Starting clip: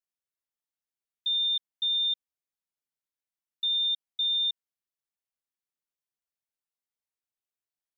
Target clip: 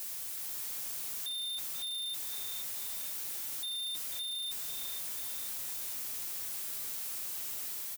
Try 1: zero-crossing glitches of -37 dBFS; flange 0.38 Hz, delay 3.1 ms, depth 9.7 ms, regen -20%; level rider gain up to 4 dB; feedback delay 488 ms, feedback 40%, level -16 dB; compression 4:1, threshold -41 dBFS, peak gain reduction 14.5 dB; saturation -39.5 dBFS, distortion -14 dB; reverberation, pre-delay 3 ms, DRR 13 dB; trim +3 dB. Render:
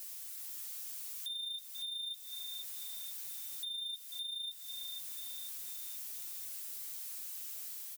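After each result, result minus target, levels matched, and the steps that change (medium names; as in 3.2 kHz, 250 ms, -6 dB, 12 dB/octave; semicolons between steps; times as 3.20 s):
compression: peak gain reduction +14.5 dB; zero-crossing glitches: distortion -9 dB
remove: compression 4:1, threshold -41 dBFS, peak gain reduction 14.5 dB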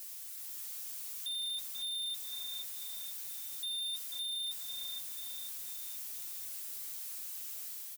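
zero-crossing glitches: distortion -9 dB
change: zero-crossing glitches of -28 dBFS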